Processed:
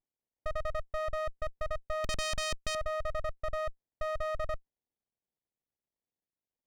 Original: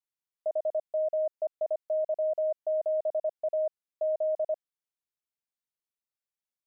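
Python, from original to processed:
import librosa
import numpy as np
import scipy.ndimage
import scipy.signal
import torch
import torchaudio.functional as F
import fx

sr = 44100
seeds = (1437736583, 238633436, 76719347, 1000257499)

y = fx.leveller(x, sr, passes=5, at=(2.04, 2.75))
y = fx.running_max(y, sr, window=33)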